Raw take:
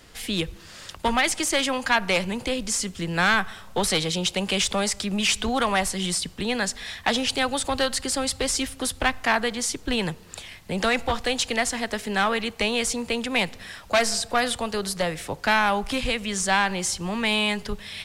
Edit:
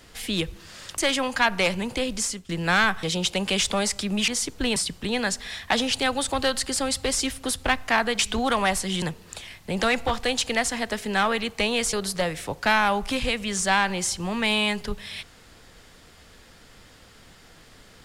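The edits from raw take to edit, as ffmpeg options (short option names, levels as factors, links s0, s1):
-filter_complex "[0:a]asplit=9[s0][s1][s2][s3][s4][s5][s6][s7][s8];[s0]atrim=end=0.982[s9];[s1]atrim=start=1.478:end=2.99,asetpts=PTS-STARTPTS,afade=t=out:st=1.222:d=0.29:silence=0.149624[s10];[s2]atrim=start=2.99:end=3.532,asetpts=PTS-STARTPTS,afade=t=in:d=0.004:c=hsin:silence=0.149624[s11];[s3]atrim=start=4.038:end=5.292[s12];[s4]atrim=start=9.548:end=10.032[s13];[s5]atrim=start=6.118:end=9.552[s14];[s6]atrim=start=5.288:end=6.122[s15];[s7]atrim=start=10.028:end=12.942[s16];[s8]atrim=start=14.738[s17];[s10][s11]concat=n=2:v=0:a=1[s18];[s9][s18]acrossfade=d=0.004:c1=hsin:c2=hsin[s19];[s19][s12]acrossfade=d=0.004:c1=hsin:c2=hsin[s20];[s20][s13]acrossfade=d=0.004:c1=hsin:c2=hsin[s21];[s21][s14]acrossfade=d=0.004:c1=hsin:c2=hsin[s22];[s22][s15]acrossfade=d=0.004:c1=hsin:c2=hsin[s23];[s23][s16]acrossfade=d=0.004:c1=hsin:c2=hsin[s24];[s24][s17]acrossfade=d=0.004:c1=hsin:c2=hsin"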